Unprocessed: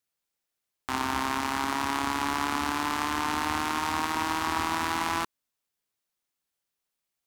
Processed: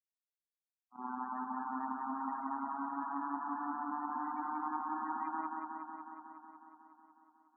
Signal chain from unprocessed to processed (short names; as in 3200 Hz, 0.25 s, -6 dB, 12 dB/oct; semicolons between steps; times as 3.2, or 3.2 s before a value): HPF 130 Hz 12 dB/oct; gate -28 dBFS, range -26 dB; limiter -24.5 dBFS, peak gain reduction 11.5 dB; loudest bins only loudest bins 16; pump 130 bpm, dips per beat 1, -13 dB, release 98 ms; speed mistake 25 fps video run at 24 fps; darkening echo 0.183 s, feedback 75%, low-pass 4700 Hz, level -3.5 dB; gain -1 dB